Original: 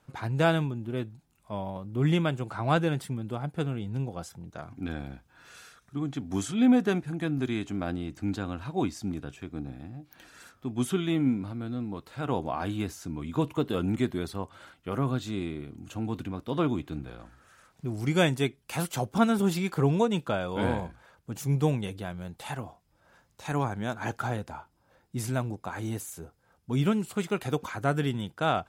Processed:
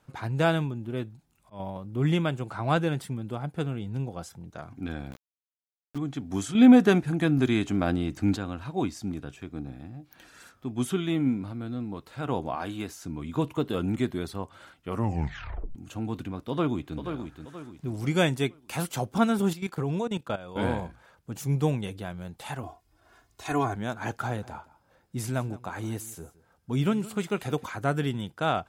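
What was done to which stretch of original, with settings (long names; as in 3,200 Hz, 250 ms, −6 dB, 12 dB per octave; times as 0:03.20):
0:00.49–0:01.60: volume swells 178 ms
0:05.11–0:05.98: centre clipping without the shift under −38.5 dBFS
0:06.55–0:08.37: clip gain +6 dB
0:12.55–0:13.03: low-shelf EQ 180 Hz −9 dB
0:14.88: tape stop 0.87 s
0:16.49–0:16.97: delay throw 480 ms, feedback 40%, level −7.5 dB
0:19.53–0:20.56: output level in coarse steps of 14 dB
0:22.63–0:23.76: comb filter 2.8 ms, depth 100%
0:24.26–0:27.65: single-tap delay 166 ms −19 dB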